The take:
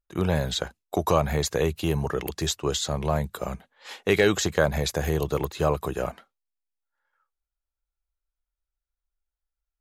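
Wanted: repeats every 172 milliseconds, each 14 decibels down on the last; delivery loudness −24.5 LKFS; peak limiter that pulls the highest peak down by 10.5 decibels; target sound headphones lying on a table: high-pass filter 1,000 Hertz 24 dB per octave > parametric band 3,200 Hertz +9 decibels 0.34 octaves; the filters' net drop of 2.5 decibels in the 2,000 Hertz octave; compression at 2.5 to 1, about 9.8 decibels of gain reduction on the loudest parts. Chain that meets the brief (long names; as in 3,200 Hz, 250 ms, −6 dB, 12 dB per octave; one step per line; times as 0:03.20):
parametric band 2,000 Hz −4 dB
downward compressor 2.5 to 1, threshold −31 dBFS
brickwall limiter −25 dBFS
high-pass filter 1,000 Hz 24 dB per octave
parametric band 3,200 Hz +9 dB 0.34 octaves
repeating echo 172 ms, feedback 20%, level −14 dB
level +15 dB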